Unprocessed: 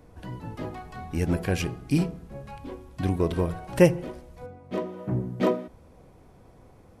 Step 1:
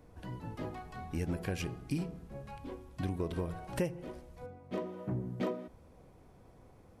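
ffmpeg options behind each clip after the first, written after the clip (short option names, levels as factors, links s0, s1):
-af "acompressor=threshold=0.0501:ratio=4,volume=0.531"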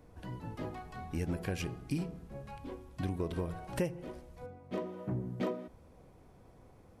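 -af anull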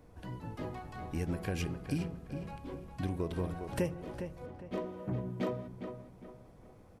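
-filter_complex "[0:a]asplit=2[s0][s1];[s1]adelay=408,lowpass=f=2900:p=1,volume=0.398,asplit=2[s2][s3];[s3]adelay=408,lowpass=f=2900:p=1,volume=0.36,asplit=2[s4][s5];[s5]adelay=408,lowpass=f=2900:p=1,volume=0.36,asplit=2[s6][s7];[s7]adelay=408,lowpass=f=2900:p=1,volume=0.36[s8];[s0][s2][s4][s6][s8]amix=inputs=5:normalize=0"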